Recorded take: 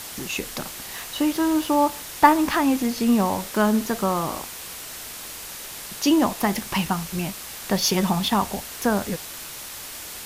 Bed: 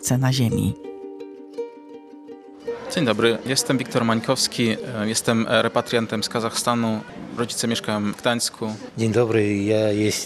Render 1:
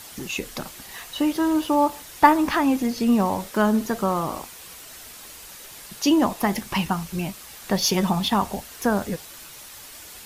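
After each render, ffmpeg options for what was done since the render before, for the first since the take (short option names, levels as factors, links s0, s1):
-af "afftdn=nr=7:nf=-37"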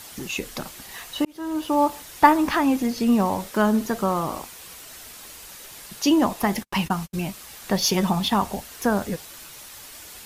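-filter_complex "[0:a]asettb=1/sr,asplit=3[s0][s1][s2];[s0]atrim=end=6.434[s3];[s1]atrim=start=6.43:end=7.31,asetpts=PTS-STARTPTS,afade=t=in:d=0.004:c=qsin,afade=t=out:st=0.876:d=0.004:c=qsin,agate=range=0.00447:threshold=0.02:ratio=16:release=100:detection=peak[s4];[s2]atrim=start=7.306[s5];[s3][s4]acrossfade=d=0.004:c1=hsin:c2=qsin[s6];[s6][s5]acrossfade=d=0.004:c1=qsin:c2=hsin,asplit=2[s7][s8];[s7]atrim=end=1.25,asetpts=PTS-STARTPTS,afade=t=out:st=1.246:d=0.004:c=hsin[s9];[s8]atrim=start=1.25,asetpts=PTS-STARTPTS,afade=t=in:d=0.56[s10];[s9][s10]concat=n=2:v=0:a=1"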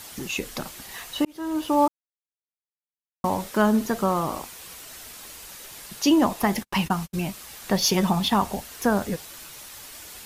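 -filter_complex "[0:a]asplit=3[s0][s1][s2];[s0]atrim=end=1.88,asetpts=PTS-STARTPTS,afade=t=out:st=1.876:d=0.004:c=hsin[s3];[s1]atrim=start=1.88:end=3.24,asetpts=PTS-STARTPTS,volume=0[s4];[s2]atrim=start=3.24,asetpts=PTS-STARTPTS,afade=t=in:d=0.004:c=hsin[s5];[s3][s4][s5]concat=n=3:v=0:a=1"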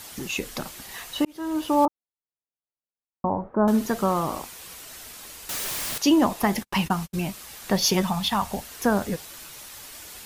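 -filter_complex "[0:a]asettb=1/sr,asplit=3[s0][s1][s2];[s0]atrim=end=1.854[s3];[s1]atrim=start=1.85:end=3.68,asetpts=PTS-STARTPTS,afade=t=in:d=0.004:c=qsin,afade=t=out:st=1.826:d=0.004:c=qsin,lowpass=f=1100:w=0.5412,lowpass=f=1100:w=1.3066[s4];[s2]atrim=start=3.676[s5];[s3][s4]acrossfade=d=0.004:c1=hsin:c2=qsin[s6];[s6][s5]acrossfade=d=0.004:c1=qsin:c2=hsin,asettb=1/sr,asplit=3[s7][s8][s9];[s7]atrim=end=5.494[s10];[s8]atrim=start=5.49:end=5.98,asetpts=PTS-STARTPTS,afade=t=in:d=0.004:c=qsin,afade=t=out:st=0.486:d=0.004:c=qsin,aeval=exprs='0.0447*sin(PI/2*5.01*val(0)/0.0447)':c=same[s11];[s9]atrim=start=5.976[s12];[s10][s11]acrossfade=d=0.004:c1=hsin:c2=qsin[s13];[s13][s12]acrossfade=d=0.004:c1=qsin:c2=hsin,asettb=1/sr,asplit=3[s14][s15][s16];[s14]atrim=end=8.024[s17];[s15]atrim=start=8.02:end=8.53,asetpts=PTS-STARTPTS,afade=t=in:d=0.004:c=qsin,afade=t=out:st=0.506:d=0.004:c=qsin,equalizer=f=350:w=1.2:g=-14[s18];[s16]atrim=start=8.526[s19];[s17][s18]acrossfade=d=0.004:c1=hsin:c2=qsin[s20];[s20][s19]acrossfade=d=0.004:c1=qsin:c2=hsin"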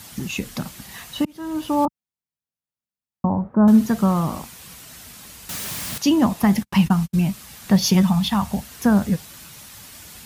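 -af "highpass=57,lowshelf=f=270:t=q:w=1.5:g=8"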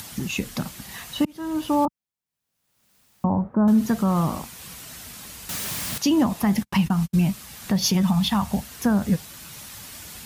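-af "acompressor=mode=upward:threshold=0.0178:ratio=2.5,alimiter=limit=0.266:level=0:latency=1:release=121"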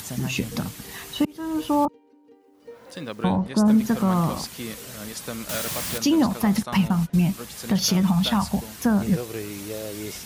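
-filter_complex "[1:a]volume=0.2[s0];[0:a][s0]amix=inputs=2:normalize=0"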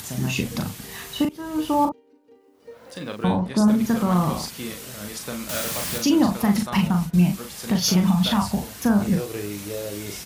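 -filter_complex "[0:a]asplit=2[s0][s1];[s1]adelay=39,volume=0.562[s2];[s0][s2]amix=inputs=2:normalize=0"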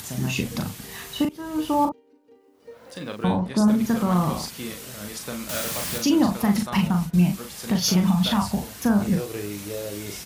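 -af "volume=0.891"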